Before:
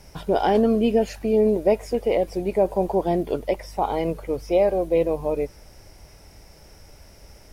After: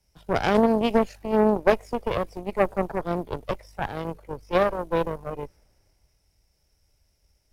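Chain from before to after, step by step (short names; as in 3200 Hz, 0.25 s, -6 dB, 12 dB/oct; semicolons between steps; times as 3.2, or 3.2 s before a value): added harmonics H 3 -13 dB, 4 -15 dB, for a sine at -8 dBFS; three-band expander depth 40%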